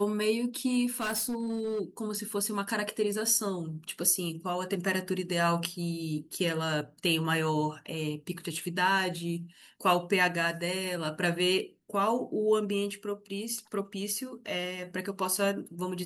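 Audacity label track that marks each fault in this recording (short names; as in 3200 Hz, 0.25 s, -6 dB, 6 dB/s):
0.860000	1.810000	clipped -28 dBFS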